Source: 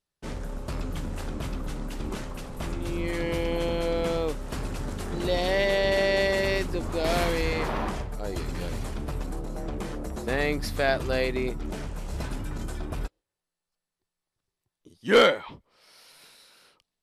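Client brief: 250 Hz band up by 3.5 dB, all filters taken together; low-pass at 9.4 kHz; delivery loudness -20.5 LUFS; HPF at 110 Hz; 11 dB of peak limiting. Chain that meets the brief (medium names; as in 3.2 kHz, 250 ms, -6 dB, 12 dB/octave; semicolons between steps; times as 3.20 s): high-pass 110 Hz; low-pass 9.4 kHz; peaking EQ 250 Hz +5 dB; trim +11 dB; peak limiter -8 dBFS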